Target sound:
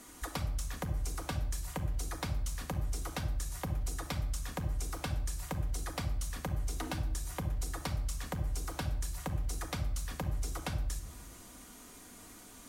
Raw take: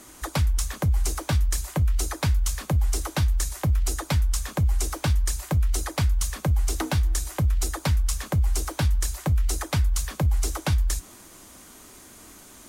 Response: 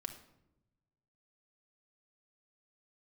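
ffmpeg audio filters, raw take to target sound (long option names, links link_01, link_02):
-filter_complex "[0:a]acompressor=threshold=-28dB:ratio=6[link_01];[1:a]atrim=start_sample=2205[link_02];[link_01][link_02]afir=irnorm=-1:irlink=0,volume=-3dB"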